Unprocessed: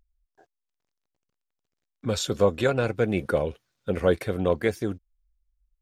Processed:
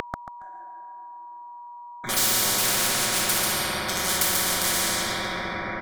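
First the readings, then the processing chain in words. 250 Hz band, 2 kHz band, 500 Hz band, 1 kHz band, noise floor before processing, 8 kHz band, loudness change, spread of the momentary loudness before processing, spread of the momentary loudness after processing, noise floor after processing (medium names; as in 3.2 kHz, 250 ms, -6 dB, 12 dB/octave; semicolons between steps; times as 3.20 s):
-5.5 dB, +8.0 dB, -9.5 dB, +7.0 dB, -84 dBFS, +19.5 dB, +4.0 dB, 10 LU, 21 LU, -42 dBFS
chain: local Wiener filter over 9 samples; comb 5.4 ms, depth 75%; gate -50 dBFS, range -49 dB; tone controls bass -14 dB, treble +6 dB; simulated room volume 200 m³, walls hard, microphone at 1.3 m; in parallel at -3 dB: peak limiter -11.5 dBFS, peak gain reduction 9.5 dB; on the sum: whistle 960 Hz -21 dBFS; static phaser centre 1.1 kHz, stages 4; feedback delay 139 ms, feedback 24%, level -6.5 dB; spectrum-flattening compressor 10:1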